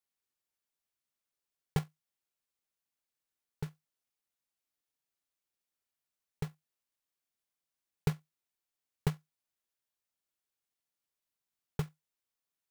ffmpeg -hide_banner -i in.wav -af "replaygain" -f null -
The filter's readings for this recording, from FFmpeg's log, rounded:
track_gain = +38.5 dB
track_peak = 0.106